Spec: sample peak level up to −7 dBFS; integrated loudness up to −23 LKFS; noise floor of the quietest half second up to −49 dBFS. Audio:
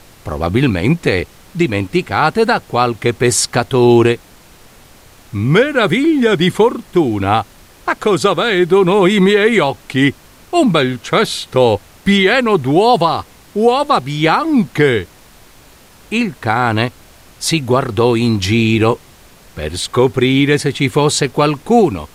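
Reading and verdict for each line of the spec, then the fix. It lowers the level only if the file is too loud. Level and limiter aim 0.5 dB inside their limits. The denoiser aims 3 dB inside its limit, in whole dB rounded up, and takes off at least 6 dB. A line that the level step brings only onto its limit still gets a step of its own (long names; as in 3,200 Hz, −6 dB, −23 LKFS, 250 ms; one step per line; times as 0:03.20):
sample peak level −1.5 dBFS: out of spec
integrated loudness −14.0 LKFS: out of spec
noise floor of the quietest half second −43 dBFS: out of spec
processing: level −9.5 dB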